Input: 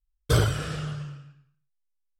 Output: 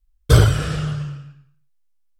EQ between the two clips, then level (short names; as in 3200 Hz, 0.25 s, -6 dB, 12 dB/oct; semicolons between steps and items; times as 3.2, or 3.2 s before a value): low shelf 100 Hz +8.5 dB; +6.0 dB